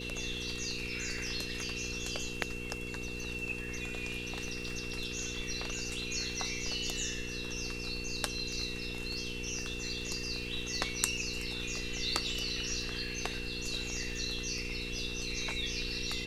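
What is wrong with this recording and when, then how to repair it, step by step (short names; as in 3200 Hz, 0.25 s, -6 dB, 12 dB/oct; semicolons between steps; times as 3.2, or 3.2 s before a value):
crackle 33/s -43 dBFS
hum 60 Hz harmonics 8 -43 dBFS
tone 2700 Hz -42 dBFS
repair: de-click; de-hum 60 Hz, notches 8; notch 2700 Hz, Q 30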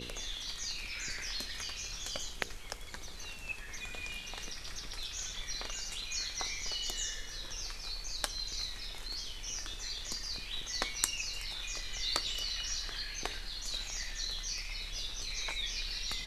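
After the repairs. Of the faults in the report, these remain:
none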